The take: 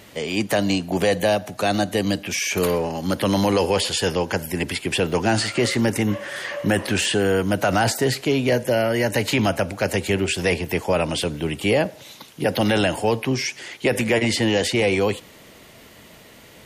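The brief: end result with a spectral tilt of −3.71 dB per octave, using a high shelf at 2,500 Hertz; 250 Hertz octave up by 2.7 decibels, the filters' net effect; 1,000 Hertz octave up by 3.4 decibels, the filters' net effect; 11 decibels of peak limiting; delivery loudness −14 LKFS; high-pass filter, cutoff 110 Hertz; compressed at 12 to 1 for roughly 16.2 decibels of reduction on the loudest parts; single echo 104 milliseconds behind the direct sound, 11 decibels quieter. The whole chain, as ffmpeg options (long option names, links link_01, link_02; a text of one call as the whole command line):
ffmpeg -i in.wav -af "highpass=110,equalizer=frequency=250:width_type=o:gain=3.5,equalizer=frequency=1000:width_type=o:gain=4,highshelf=frequency=2500:gain=3.5,acompressor=threshold=-30dB:ratio=12,alimiter=level_in=2.5dB:limit=-24dB:level=0:latency=1,volume=-2.5dB,aecho=1:1:104:0.282,volume=22dB" out.wav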